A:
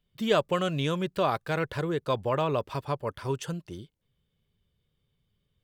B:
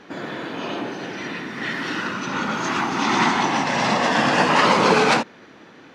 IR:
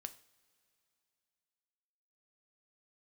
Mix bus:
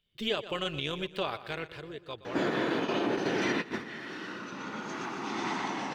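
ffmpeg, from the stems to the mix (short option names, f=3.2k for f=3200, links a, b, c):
-filter_complex "[0:a]tremolo=f=210:d=0.571,equalizer=f=3k:w=0.78:g=13,volume=-5dB,afade=t=out:st=1.2:d=0.64:silence=0.316228,asplit=3[a][b][c];[b]volume=-15.5dB[d];[1:a]adelay=2250,volume=2.5dB,asplit=3[e][f][g];[f]volume=-16.5dB[h];[g]volume=-23dB[i];[c]apad=whole_len=361589[j];[e][j]sidechaingate=range=-33dB:threshold=-53dB:ratio=16:detection=peak[k];[2:a]atrim=start_sample=2205[l];[h][l]afir=irnorm=-1:irlink=0[m];[d][i]amix=inputs=2:normalize=0,aecho=0:1:120|240|360|480|600:1|0.35|0.122|0.0429|0.015[n];[a][k][m][n]amix=inputs=4:normalize=0,equalizer=f=400:w=1.8:g=5,alimiter=limit=-19.5dB:level=0:latency=1:release=249"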